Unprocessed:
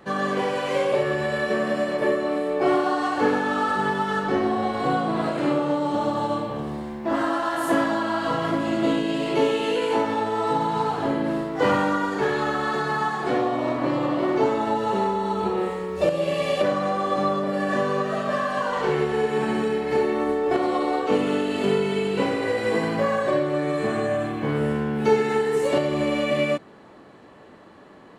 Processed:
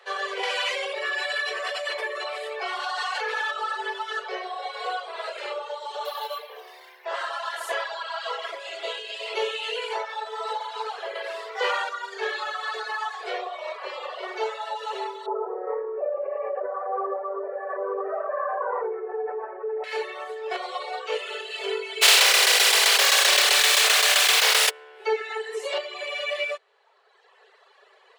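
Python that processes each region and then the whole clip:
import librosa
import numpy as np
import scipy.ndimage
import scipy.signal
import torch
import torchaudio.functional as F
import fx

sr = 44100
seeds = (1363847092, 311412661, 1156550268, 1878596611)

y = fx.chain(x, sr, fx.highpass(hz=860.0, slope=6),
    fx.env_flatten(amount_pct=100), at=(0.43, 3.51))
y = fx.chain(y, sr, fx.lowpass(hz=9700.0, slope=12),
    fx.high_shelf(hz=2200.0, db=5.0),
    fx.resample_bad(factor=3, down='filtered', up='hold'), at=(6.05, 7.05))
y = fx.chain(y, sr, fx.highpass(hz=340.0, slope=12),
    fx.env_flatten(amount_pct=50), at=(11.15, 11.89))
y = fx.chain(y, sr, fx.gaussian_blur(sigma=7.9),
    fx.env_flatten(amount_pct=100), at=(15.26, 19.84))
y = fx.spec_flatten(y, sr, power=0.26, at=(22.01, 24.69), fade=0.02)
y = fx.tremolo_shape(y, sr, shape='saw_down', hz=7.7, depth_pct=65, at=(22.01, 24.69), fade=0.02)
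y = fx.env_flatten(y, sr, amount_pct=100, at=(22.01, 24.69), fade=0.02)
y = fx.dereverb_blind(y, sr, rt60_s=1.7)
y = scipy.signal.sosfilt(scipy.signal.cheby1(8, 1.0, 390.0, 'highpass', fs=sr, output='sos'), y)
y = fx.peak_eq(y, sr, hz=3600.0, db=11.0, octaves=2.3)
y = F.gain(torch.from_numpy(y), -5.5).numpy()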